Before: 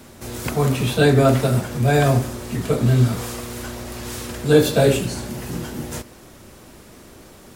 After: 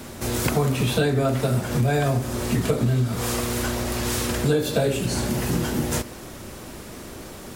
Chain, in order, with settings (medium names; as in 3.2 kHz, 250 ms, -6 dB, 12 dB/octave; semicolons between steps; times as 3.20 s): compression 10:1, threshold -24 dBFS, peak gain reduction 16 dB; trim +6 dB